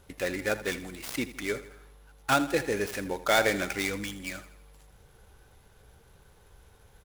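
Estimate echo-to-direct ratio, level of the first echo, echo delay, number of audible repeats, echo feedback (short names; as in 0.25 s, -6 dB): -14.0 dB, -15.0 dB, 81 ms, 4, 49%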